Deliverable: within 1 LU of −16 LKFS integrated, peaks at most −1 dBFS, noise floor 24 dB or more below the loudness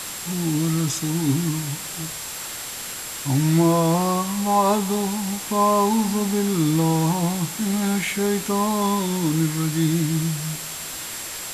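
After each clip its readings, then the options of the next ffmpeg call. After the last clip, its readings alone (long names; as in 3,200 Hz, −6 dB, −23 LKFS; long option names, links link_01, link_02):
interfering tone 7,600 Hz; level of the tone −37 dBFS; background noise floor −33 dBFS; target noise floor −46 dBFS; integrated loudness −22.0 LKFS; sample peak −7.5 dBFS; target loudness −16.0 LKFS
→ -af "bandreject=frequency=7600:width=30"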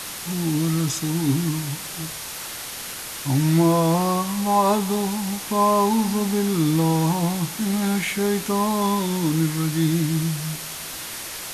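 interfering tone none found; background noise floor −34 dBFS; target noise floor −47 dBFS
→ -af "afftdn=noise_reduction=13:noise_floor=-34"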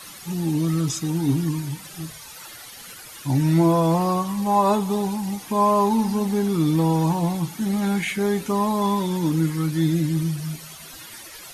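background noise floor −41 dBFS; target noise floor −46 dBFS
→ -af "afftdn=noise_reduction=6:noise_floor=-41"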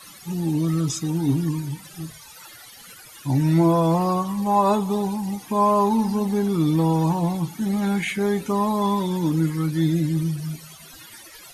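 background noise floor −45 dBFS; target noise floor −46 dBFS
→ -af "afftdn=noise_reduction=6:noise_floor=-45"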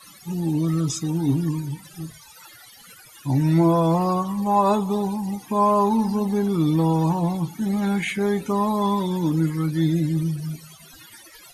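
background noise floor −48 dBFS; integrated loudness −22.0 LKFS; sample peak −8.5 dBFS; target loudness −16.0 LKFS
→ -af "volume=6dB"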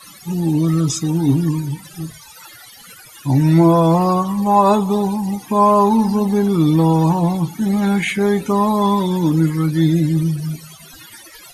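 integrated loudness −16.0 LKFS; sample peak −2.5 dBFS; background noise floor −42 dBFS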